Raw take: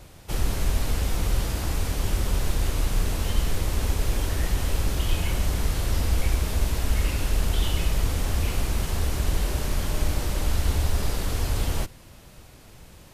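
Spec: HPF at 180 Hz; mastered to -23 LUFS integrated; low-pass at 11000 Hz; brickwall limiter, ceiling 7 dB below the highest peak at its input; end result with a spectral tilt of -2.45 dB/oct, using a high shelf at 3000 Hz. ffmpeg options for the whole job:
-af "highpass=180,lowpass=11k,highshelf=f=3k:g=9,volume=7.5dB,alimiter=limit=-15dB:level=0:latency=1"

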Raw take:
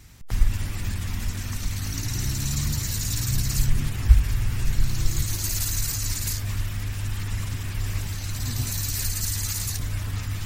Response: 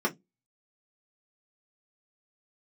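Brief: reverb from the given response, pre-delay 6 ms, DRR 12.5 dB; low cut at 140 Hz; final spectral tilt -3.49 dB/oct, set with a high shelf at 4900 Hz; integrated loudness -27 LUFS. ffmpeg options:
-filter_complex "[0:a]highpass=140,highshelf=f=4.9k:g=-7.5,asplit=2[a][b];[1:a]atrim=start_sample=2205,adelay=6[c];[b][c]afir=irnorm=-1:irlink=0,volume=-22.5dB[d];[a][d]amix=inputs=2:normalize=0,volume=6dB"

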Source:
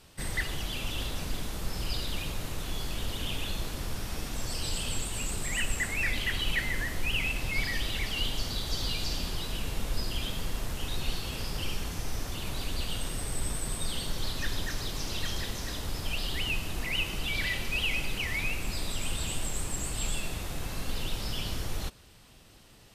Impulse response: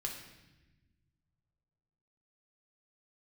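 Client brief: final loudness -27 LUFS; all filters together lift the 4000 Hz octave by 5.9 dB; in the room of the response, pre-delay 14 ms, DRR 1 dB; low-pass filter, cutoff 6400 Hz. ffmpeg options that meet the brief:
-filter_complex "[0:a]lowpass=6.4k,equalizer=f=4k:t=o:g=8.5,asplit=2[a][b];[1:a]atrim=start_sample=2205,adelay=14[c];[b][c]afir=irnorm=-1:irlink=0,volume=-1.5dB[d];[a][d]amix=inputs=2:normalize=0,volume=0.5dB"

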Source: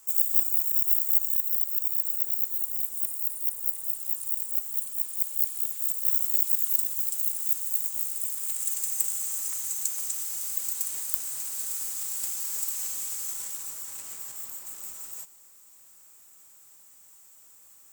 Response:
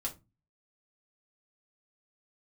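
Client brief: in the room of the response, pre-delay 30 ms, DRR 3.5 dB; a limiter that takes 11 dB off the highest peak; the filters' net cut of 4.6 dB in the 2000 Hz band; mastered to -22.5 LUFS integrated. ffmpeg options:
-filter_complex "[0:a]equalizer=f=2k:t=o:g=-6,alimiter=limit=-13.5dB:level=0:latency=1,asplit=2[a][b];[1:a]atrim=start_sample=2205,adelay=30[c];[b][c]afir=irnorm=-1:irlink=0,volume=-4.5dB[d];[a][d]amix=inputs=2:normalize=0,volume=3dB"

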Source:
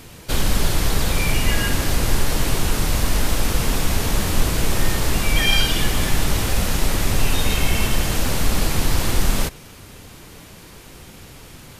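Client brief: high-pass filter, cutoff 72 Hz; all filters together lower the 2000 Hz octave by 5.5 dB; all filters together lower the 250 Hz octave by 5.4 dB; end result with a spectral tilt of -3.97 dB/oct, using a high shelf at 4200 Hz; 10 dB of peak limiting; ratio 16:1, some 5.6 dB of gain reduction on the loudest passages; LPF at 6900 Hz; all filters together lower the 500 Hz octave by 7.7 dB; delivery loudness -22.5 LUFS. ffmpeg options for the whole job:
-af "highpass=72,lowpass=6.9k,equalizer=f=250:t=o:g=-5.5,equalizer=f=500:t=o:g=-8,equalizer=f=2k:t=o:g=-5,highshelf=f=4.2k:g=-6,acompressor=threshold=-27dB:ratio=16,volume=15dB,alimiter=limit=-13dB:level=0:latency=1"

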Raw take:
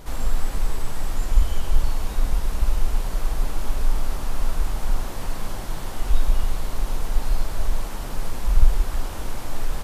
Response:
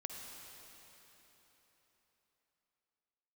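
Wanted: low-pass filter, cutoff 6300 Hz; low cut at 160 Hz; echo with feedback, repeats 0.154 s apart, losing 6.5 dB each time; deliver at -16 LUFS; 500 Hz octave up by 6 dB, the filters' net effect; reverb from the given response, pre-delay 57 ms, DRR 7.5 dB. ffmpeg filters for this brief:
-filter_complex "[0:a]highpass=160,lowpass=6.3k,equalizer=f=500:t=o:g=7.5,aecho=1:1:154|308|462|616|770|924:0.473|0.222|0.105|0.0491|0.0231|0.0109,asplit=2[a][b];[1:a]atrim=start_sample=2205,adelay=57[c];[b][c]afir=irnorm=-1:irlink=0,volume=-6dB[d];[a][d]amix=inputs=2:normalize=0,volume=17dB"

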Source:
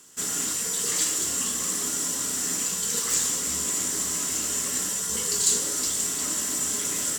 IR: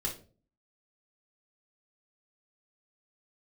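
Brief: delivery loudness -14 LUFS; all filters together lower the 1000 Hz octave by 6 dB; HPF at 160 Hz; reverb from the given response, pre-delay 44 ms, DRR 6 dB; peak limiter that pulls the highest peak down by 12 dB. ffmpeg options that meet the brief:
-filter_complex "[0:a]highpass=160,equalizer=f=1k:t=o:g=-8,alimiter=limit=-19.5dB:level=0:latency=1,asplit=2[a][b];[1:a]atrim=start_sample=2205,adelay=44[c];[b][c]afir=irnorm=-1:irlink=0,volume=-9dB[d];[a][d]amix=inputs=2:normalize=0,volume=11.5dB"

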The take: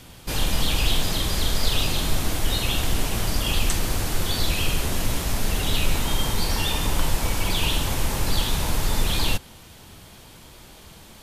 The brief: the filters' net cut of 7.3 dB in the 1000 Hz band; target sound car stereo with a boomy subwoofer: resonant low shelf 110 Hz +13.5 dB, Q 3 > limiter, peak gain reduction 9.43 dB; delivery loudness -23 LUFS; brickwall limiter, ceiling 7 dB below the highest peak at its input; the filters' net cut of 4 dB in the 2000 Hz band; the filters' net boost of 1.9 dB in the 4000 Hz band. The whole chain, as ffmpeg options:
-af "equalizer=f=1k:t=o:g=-8,equalizer=f=2k:t=o:g=-5.5,equalizer=f=4k:t=o:g=4.5,alimiter=limit=-13.5dB:level=0:latency=1,lowshelf=f=110:t=q:w=3:g=13.5,volume=-3.5dB,alimiter=limit=-11dB:level=0:latency=1"

